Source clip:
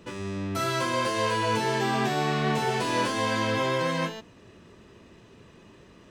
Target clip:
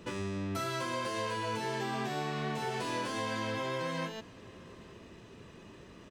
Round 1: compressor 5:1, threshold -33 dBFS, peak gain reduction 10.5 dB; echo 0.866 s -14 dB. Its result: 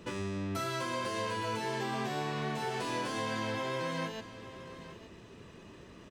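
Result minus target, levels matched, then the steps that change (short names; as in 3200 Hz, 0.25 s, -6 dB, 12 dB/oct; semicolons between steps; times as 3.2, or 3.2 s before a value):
echo-to-direct +9.5 dB
change: echo 0.866 s -23.5 dB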